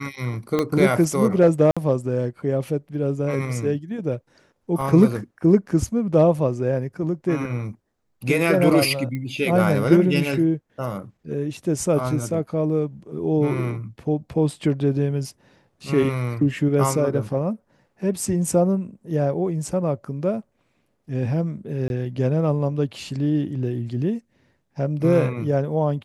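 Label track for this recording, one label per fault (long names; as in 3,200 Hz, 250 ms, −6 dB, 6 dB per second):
0.590000	0.590000	click −9 dBFS
1.710000	1.770000	drop-out 56 ms
4.810000	4.810000	drop-out 4.1 ms
9.150000	9.150000	click −19 dBFS
21.880000	21.900000	drop-out 21 ms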